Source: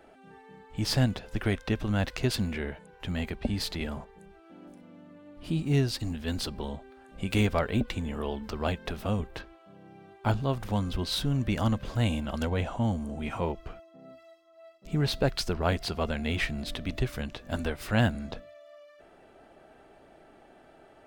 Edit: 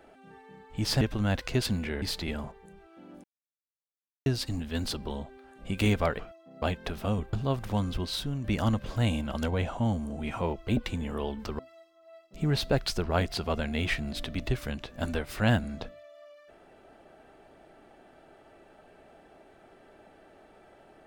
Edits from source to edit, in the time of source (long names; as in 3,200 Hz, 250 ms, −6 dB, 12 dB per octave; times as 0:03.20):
0:01.01–0:01.70: remove
0:02.71–0:03.55: remove
0:04.77–0:05.79: silence
0:07.72–0:08.63: swap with 0:13.67–0:14.10
0:09.34–0:10.32: remove
0:10.88–0:11.43: fade out, to −7.5 dB